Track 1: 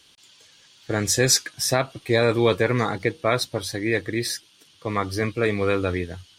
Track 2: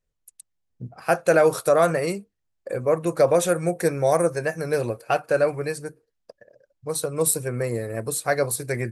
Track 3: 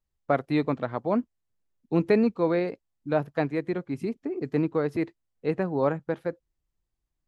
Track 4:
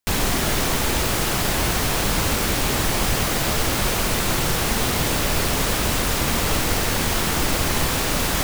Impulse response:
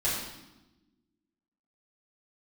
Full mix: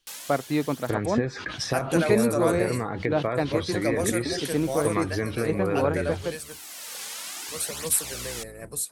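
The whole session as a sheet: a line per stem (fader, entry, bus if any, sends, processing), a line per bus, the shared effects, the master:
+3.0 dB, 0.00 s, bus A, no send, gate with hold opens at -42 dBFS; sustainer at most 100 dB/s
-9.0 dB, 0.65 s, no bus, no send, octaver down 1 oct, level +3 dB; tilt +2.5 dB/oct
-0.5 dB, 0.00 s, no bus, no send, high shelf 8700 Hz +7.5 dB
-15.5 dB, 0.00 s, bus A, no send, HPF 310 Hz 12 dB/oct; tilt +4 dB/oct; tape flanging out of phase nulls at 0.57 Hz, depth 3.3 ms; auto duck -12 dB, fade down 0.50 s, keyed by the first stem
bus A: 0.0 dB, treble ducked by the level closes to 1500 Hz, closed at -15 dBFS; compressor 6:1, threshold -24 dBFS, peak gain reduction 12.5 dB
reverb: off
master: dry

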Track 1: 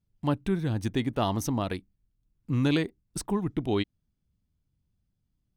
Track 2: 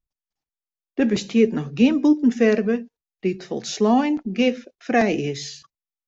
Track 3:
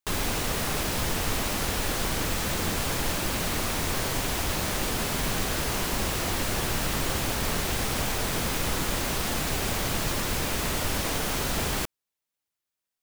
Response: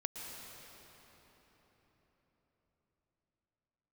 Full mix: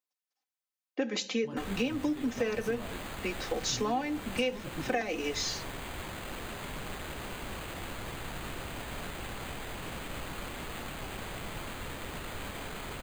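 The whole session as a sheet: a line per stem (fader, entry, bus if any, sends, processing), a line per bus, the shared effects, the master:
-6.5 dB, 1.20 s, no send, detuned doubles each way 48 cents
-1.0 dB, 0.00 s, no send, HPF 460 Hz 12 dB/oct; comb 3.9 ms, depth 75%
-12.0 dB, 1.50 s, no send, sample-and-hold 8×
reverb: off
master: compressor 6:1, threshold -28 dBFS, peak gain reduction 13.5 dB

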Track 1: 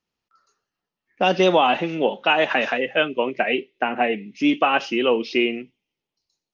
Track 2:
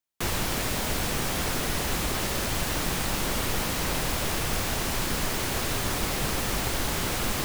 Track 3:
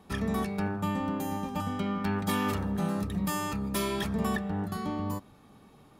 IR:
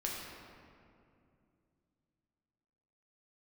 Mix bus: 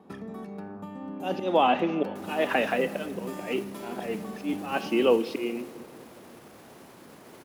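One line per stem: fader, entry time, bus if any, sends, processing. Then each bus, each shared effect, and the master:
-4.5 dB, 0.00 s, send -15 dB, auto swell 0.228 s
-10.5 dB, 1.95 s, no send, bell 11000 Hz +6.5 dB 0.27 oct; limiter -25 dBFS, peak gain reduction 10.5 dB
+1.0 dB, 0.00 s, send -12 dB, compressor 6:1, threshold -39 dBFS, peak gain reduction 13 dB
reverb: on, RT60 2.5 s, pre-delay 6 ms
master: HPF 230 Hz 12 dB/oct; tilt shelf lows +4.5 dB, about 840 Hz; mismatched tape noise reduction decoder only

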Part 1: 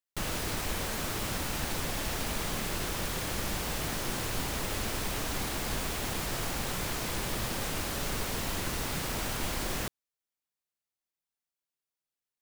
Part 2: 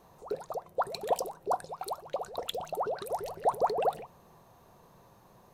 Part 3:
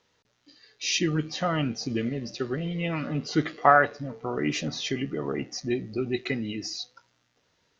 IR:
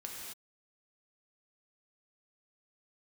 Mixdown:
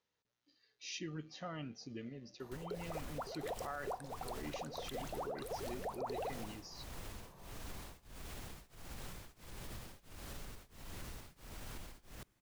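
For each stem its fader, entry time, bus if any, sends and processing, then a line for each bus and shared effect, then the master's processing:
-15.0 dB, 2.35 s, send -17.5 dB, low shelf 120 Hz +8.5 dB; limiter -23 dBFS, peak gain reduction 7 dB; beating tremolo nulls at 1.5 Hz
-2.5 dB, 2.40 s, send -13 dB, compressor 1.5:1, threshold -47 dBFS, peak gain reduction 9.5 dB
-18.0 dB, 0.00 s, no send, dry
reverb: on, pre-delay 3 ms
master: limiter -33 dBFS, peak gain reduction 10.5 dB

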